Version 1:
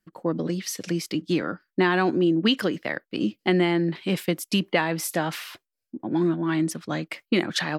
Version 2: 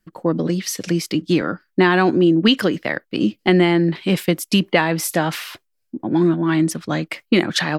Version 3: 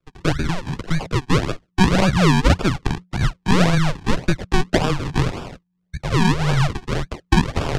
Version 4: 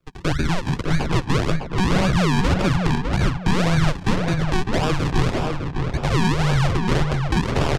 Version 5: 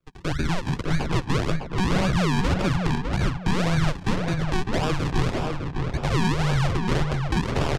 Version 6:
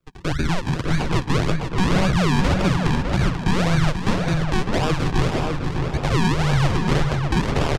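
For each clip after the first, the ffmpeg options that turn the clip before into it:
-af "lowshelf=f=71:g=9,volume=2"
-af "acrusher=samples=40:mix=1:aa=0.000001:lfo=1:lforange=40:lforate=1.8,afreqshift=-180,lowpass=5900"
-filter_complex "[0:a]asplit=2[s0][s1];[s1]acompressor=threshold=0.0708:ratio=6,volume=0.708[s2];[s0][s2]amix=inputs=2:normalize=0,alimiter=limit=0.266:level=0:latency=1:release=15,asplit=2[s3][s4];[s4]adelay=605,lowpass=f=2400:p=1,volume=0.631,asplit=2[s5][s6];[s6]adelay=605,lowpass=f=2400:p=1,volume=0.32,asplit=2[s7][s8];[s8]adelay=605,lowpass=f=2400:p=1,volume=0.32,asplit=2[s9][s10];[s10]adelay=605,lowpass=f=2400:p=1,volume=0.32[s11];[s3][s5][s7][s9][s11]amix=inputs=5:normalize=0"
-af "dynaudnorm=f=210:g=3:m=1.58,volume=0.447"
-af "aecho=1:1:486:0.355,volume=1.41"

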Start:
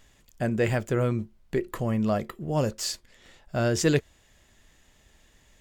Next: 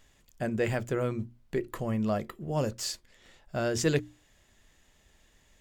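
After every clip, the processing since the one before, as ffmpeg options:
-af "bandreject=f=60:t=h:w=6,bandreject=f=120:t=h:w=6,bandreject=f=180:t=h:w=6,bandreject=f=240:t=h:w=6,bandreject=f=300:t=h:w=6,volume=0.668"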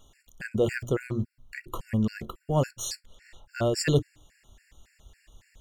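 -af "asubboost=boost=2.5:cutoff=130,afftfilt=real='re*gt(sin(2*PI*3.6*pts/sr)*(1-2*mod(floor(b*sr/1024/1400),2)),0)':imag='im*gt(sin(2*PI*3.6*pts/sr)*(1-2*mod(floor(b*sr/1024/1400),2)),0)':win_size=1024:overlap=0.75,volume=1.88"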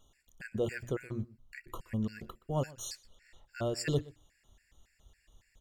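-filter_complex "[0:a]asplit=2[s0][s1];[s1]adelay=122.4,volume=0.0891,highshelf=f=4000:g=-2.76[s2];[s0][s2]amix=inputs=2:normalize=0,volume=0.398"

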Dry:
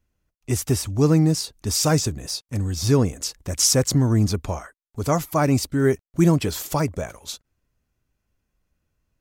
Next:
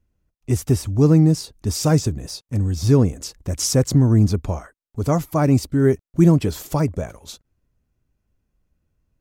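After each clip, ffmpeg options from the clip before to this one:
-af "tiltshelf=f=670:g=4.5"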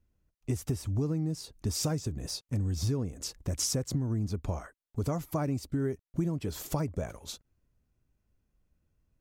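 -af "acompressor=threshold=0.0708:ratio=12,volume=0.631"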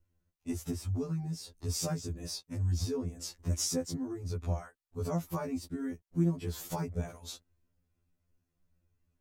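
-af "afftfilt=real='re*2*eq(mod(b,4),0)':imag='im*2*eq(mod(b,4),0)':win_size=2048:overlap=0.75"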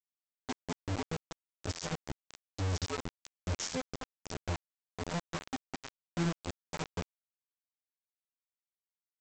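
-af "aecho=1:1:231|462:0.0891|0.0134,aresample=16000,acrusher=bits=4:mix=0:aa=0.000001,aresample=44100,volume=0.562"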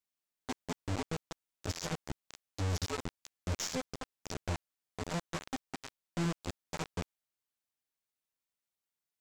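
-af "aeval=exprs='(tanh(39.8*val(0)+0.2)-tanh(0.2))/39.8':c=same,volume=1.58"

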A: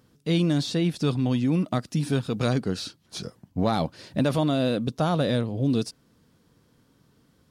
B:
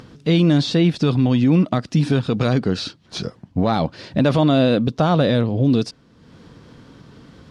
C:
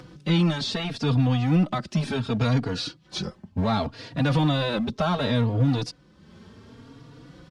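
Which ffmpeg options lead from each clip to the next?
-af "lowpass=4700,alimiter=limit=0.141:level=0:latency=1:release=53,acompressor=mode=upward:threshold=0.00708:ratio=2.5,volume=2.82"
-filter_complex "[0:a]acrossover=split=170|720[s0][s1][s2];[s1]volume=17.8,asoftclip=hard,volume=0.0562[s3];[s0][s3][s2]amix=inputs=3:normalize=0,asplit=2[s4][s5];[s5]adelay=3.6,afreqshift=0.68[s6];[s4][s6]amix=inputs=2:normalize=1"

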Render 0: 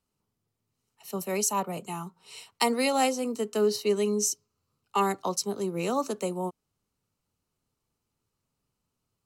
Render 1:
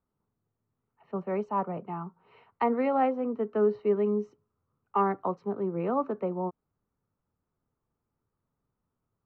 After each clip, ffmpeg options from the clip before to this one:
-af "lowpass=f=1700:w=0.5412,lowpass=f=1700:w=1.3066"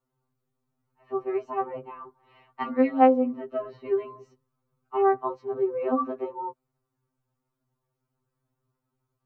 -af "afftfilt=real='re*2.45*eq(mod(b,6),0)':imag='im*2.45*eq(mod(b,6),0)':win_size=2048:overlap=0.75,volume=1.68"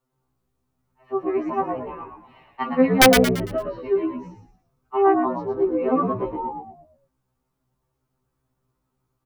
-filter_complex "[0:a]aeval=exprs='(mod(2.99*val(0)+1,2)-1)/2.99':c=same,asplit=6[s0][s1][s2][s3][s4][s5];[s1]adelay=113,afreqshift=-72,volume=0.531[s6];[s2]adelay=226,afreqshift=-144,volume=0.211[s7];[s3]adelay=339,afreqshift=-216,volume=0.0851[s8];[s4]adelay=452,afreqshift=-288,volume=0.0339[s9];[s5]adelay=565,afreqshift=-360,volume=0.0136[s10];[s0][s6][s7][s8][s9][s10]amix=inputs=6:normalize=0,volume=1.58"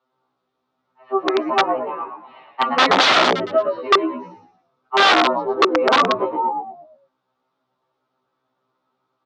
-af "aeval=exprs='(mod(5.31*val(0)+1,2)-1)/5.31':c=same,highpass=300,equalizer=f=600:t=q:w=4:g=5,equalizer=f=850:t=q:w=4:g=4,equalizer=f=1300:t=q:w=4:g=7,equalizer=f=3600:t=q:w=4:g=6,lowpass=f=4900:w=0.5412,lowpass=f=4900:w=1.3066,volume=1.68"

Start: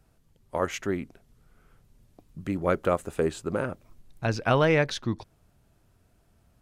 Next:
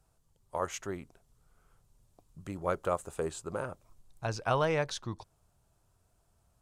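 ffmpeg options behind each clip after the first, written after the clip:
-af "equalizer=f=250:t=o:w=1:g=-7,equalizer=f=1000:t=o:w=1:g=5,equalizer=f=2000:t=o:w=1:g=-5,equalizer=f=8000:t=o:w=1:g=7,volume=0.473"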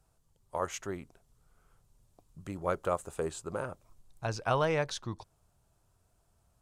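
-af anull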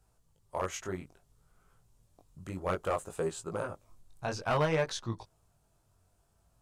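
-af "flanger=delay=17.5:depth=4.4:speed=0.59,aeval=exprs='clip(val(0),-1,0.0398)':c=same,volume=1.5"

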